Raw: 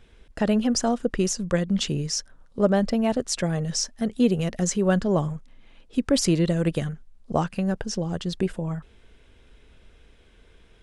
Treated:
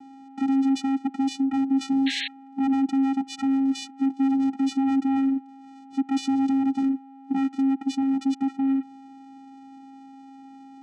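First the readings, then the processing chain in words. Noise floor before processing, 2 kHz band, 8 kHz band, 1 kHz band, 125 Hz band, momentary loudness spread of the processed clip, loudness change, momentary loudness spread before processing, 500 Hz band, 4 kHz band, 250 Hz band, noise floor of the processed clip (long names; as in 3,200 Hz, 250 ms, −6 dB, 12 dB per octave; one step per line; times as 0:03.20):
−55 dBFS, −2.5 dB, below −10 dB, +1.0 dB, below −25 dB, 7 LU, 0.0 dB, 9 LU, below −25 dB, −4.0 dB, +3.5 dB, −46 dBFS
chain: in parallel at +2 dB: downward compressor, threshold −34 dBFS, peak gain reduction 18 dB
on the sum: hard clipping −22.5 dBFS, distortion −7 dB
steady tone 570 Hz −44 dBFS
channel vocoder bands 4, square 270 Hz
sound drawn into the spectrogram noise, 0:02.06–0:02.28, 1,600–4,300 Hz −33 dBFS
level +3.5 dB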